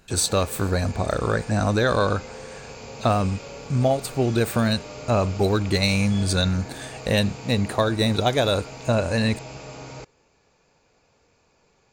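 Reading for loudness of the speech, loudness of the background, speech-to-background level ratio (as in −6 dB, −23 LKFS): −23.0 LKFS, −38.5 LKFS, 15.5 dB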